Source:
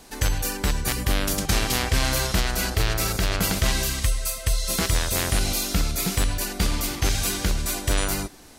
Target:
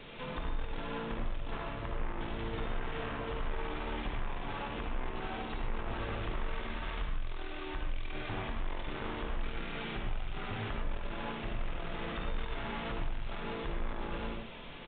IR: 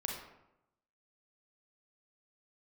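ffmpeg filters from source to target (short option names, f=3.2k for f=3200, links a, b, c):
-filter_complex "[0:a]acrossover=split=3000[a][b];[b]acompressor=threshold=-39dB:ratio=4:attack=1:release=60[c];[a][c]amix=inputs=2:normalize=0,equalizer=f=150:t=o:w=1.9:g=-6.5,acompressor=threshold=-27dB:ratio=6,asoftclip=type=tanh:threshold=-29dB,aeval=exprs='0.0355*(cos(1*acos(clip(val(0)/0.0355,-1,1)))-cos(1*PI/2))+0.00708*(cos(5*acos(clip(val(0)/0.0355,-1,1)))-cos(5*PI/2))':c=same[d];[1:a]atrim=start_sample=2205,atrim=end_sample=4410[e];[d][e]afir=irnorm=-1:irlink=0,asetrate=25442,aresample=44100,aresample=8000,aresample=44100,volume=-3dB"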